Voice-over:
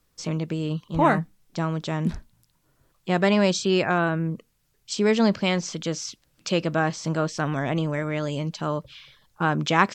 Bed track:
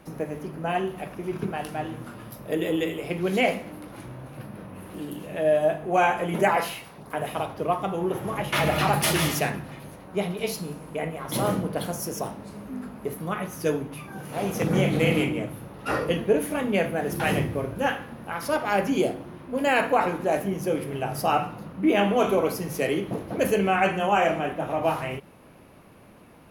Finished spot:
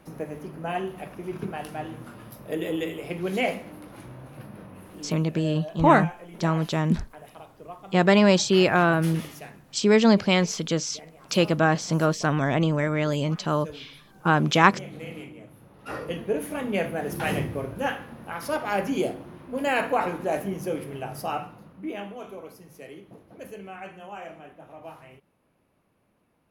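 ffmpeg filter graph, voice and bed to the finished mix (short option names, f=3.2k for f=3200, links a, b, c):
-filter_complex "[0:a]adelay=4850,volume=2.5dB[a];[1:a]volume=11dB,afade=t=out:st=4.62:d=0.93:silence=0.211349,afade=t=in:st=15.39:d=1.4:silence=0.199526,afade=t=out:st=20.5:d=1.69:silence=0.16788[b];[a][b]amix=inputs=2:normalize=0"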